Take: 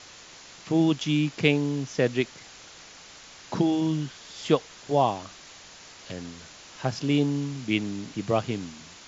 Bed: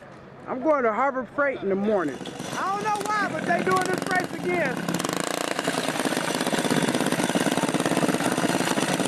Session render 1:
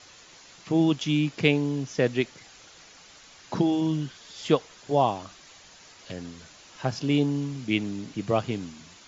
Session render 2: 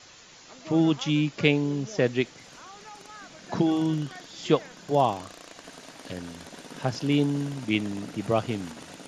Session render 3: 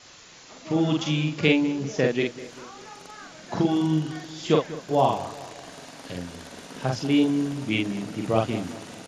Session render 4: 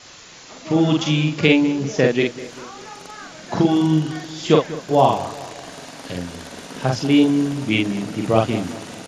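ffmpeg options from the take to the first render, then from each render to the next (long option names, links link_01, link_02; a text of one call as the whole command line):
ffmpeg -i in.wav -af "afftdn=noise_reduction=6:noise_floor=-48" out.wav
ffmpeg -i in.wav -i bed.wav -filter_complex "[1:a]volume=-21dB[link_01];[0:a][link_01]amix=inputs=2:normalize=0" out.wav
ffmpeg -i in.wav -filter_complex "[0:a]asplit=2[link_01][link_02];[link_02]adelay=45,volume=-2.5dB[link_03];[link_01][link_03]amix=inputs=2:normalize=0,asplit=2[link_04][link_05];[link_05]adelay=196,lowpass=frequency=2000:poles=1,volume=-15dB,asplit=2[link_06][link_07];[link_07]adelay=196,lowpass=frequency=2000:poles=1,volume=0.54,asplit=2[link_08][link_09];[link_09]adelay=196,lowpass=frequency=2000:poles=1,volume=0.54,asplit=2[link_10][link_11];[link_11]adelay=196,lowpass=frequency=2000:poles=1,volume=0.54,asplit=2[link_12][link_13];[link_13]adelay=196,lowpass=frequency=2000:poles=1,volume=0.54[link_14];[link_04][link_06][link_08][link_10][link_12][link_14]amix=inputs=6:normalize=0" out.wav
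ffmpeg -i in.wav -af "volume=6dB,alimiter=limit=-1dB:level=0:latency=1" out.wav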